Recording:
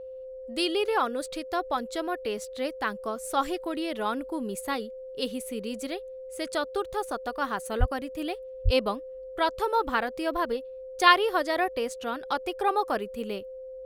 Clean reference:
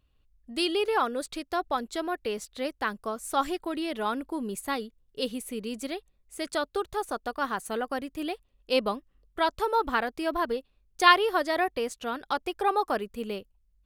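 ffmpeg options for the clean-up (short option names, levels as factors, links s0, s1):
-filter_complex "[0:a]bandreject=f=520:w=30,asplit=3[s0][s1][s2];[s0]afade=t=out:st=7.79:d=0.02[s3];[s1]highpass=f=140:w=0.5412,highpass=f=140:w=1.3066,afade=t=in:st=7.79:d=0.02,afade=t=out:st=7.91:d=0.02[s4];[s2]afade=t=in:st=7.91:d=0.02[s5];[s3][s4][s5]amix=inputs=3:normalize=0,asplit=3[s6][s7][s8];[s6]afade=t=out:st=8.64:d=0.02[s9];[s7]highpass=f=140:w=0.5412,highpass=f=140:w=1.3066,afade=t=in:st=8.64:d=0.02,afade=t=out:st=8.76:d=0.02[s10];[s8]afade=t=in:st=8.76:d=0.02[s11];[s9][s10][s11]amix=inputs=3:normalize=0"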